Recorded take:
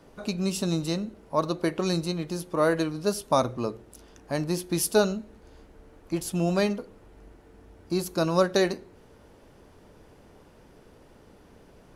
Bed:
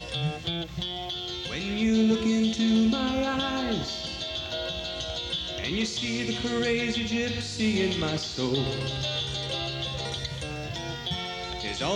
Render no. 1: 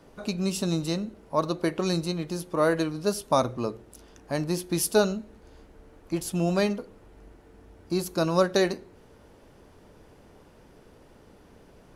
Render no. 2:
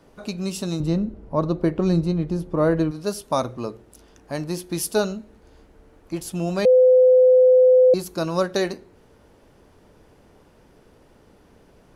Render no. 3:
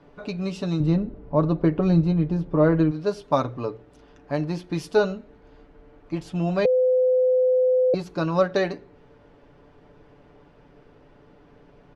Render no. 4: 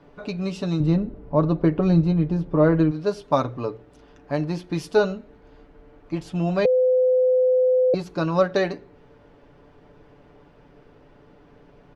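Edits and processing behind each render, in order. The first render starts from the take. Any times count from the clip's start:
no processing that can be heard
0:00.80–0:02.91: spectral tilt −3.5 dB per octave; 0:06.65–0:07.94: beep over 509 Hz −10 dBFS
low-pass filter 3,200 Hz 12 dB per octave; comb filter 6.9 ms, depth 50%
level +1 dB

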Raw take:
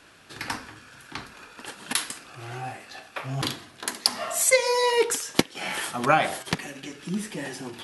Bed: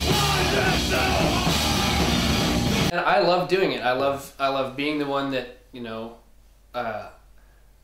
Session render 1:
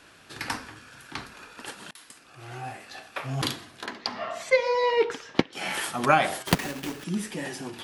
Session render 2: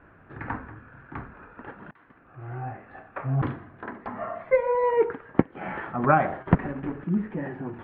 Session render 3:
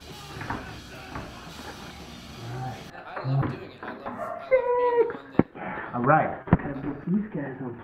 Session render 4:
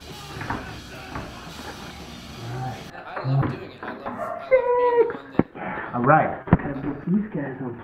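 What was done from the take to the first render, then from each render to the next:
0:01.91–0:03.20: fade in equal-power; 0:03.86–0:05.53: high-frequency loss of the air 240 metres; 0:06.47–0:07.04: each half-wave held at its own peak
inverse Chebyshev low-pass filter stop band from 5,600 Hz, stop band 60 dB; low-shelf EQ 170 Hz +10.5 dB
mix in bed −21 dB
level +3.5 dB; brickwall limiter −2 dBFS, peak gain reduction 3 dB

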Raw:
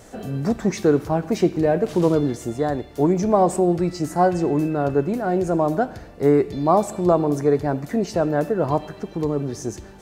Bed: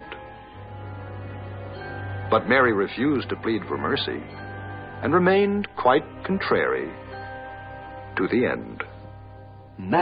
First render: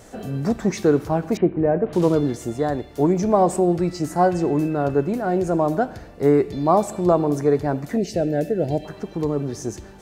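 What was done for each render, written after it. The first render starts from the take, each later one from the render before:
0:01.37–0:01.93: Gaussian smoothing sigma 4.1 samples
0:07.97–0:08.85: Butterworth band-reject 1,100 Hz, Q 1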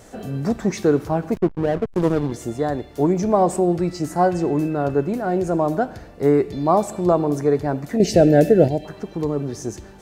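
0:01.34–0:02.32: slack as between gear wheels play −18.5 dBFS
0:08.00–0:08.68: clip gain +8.5 dB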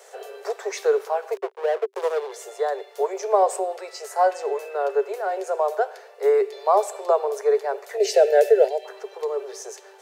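Chebyshev high-pass filter 390 Hz, order 10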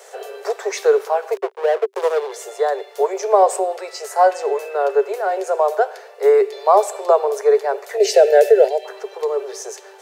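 level +5.5 dB
brickwall limiter −2 dBFS, peak gain reduction 2 dB

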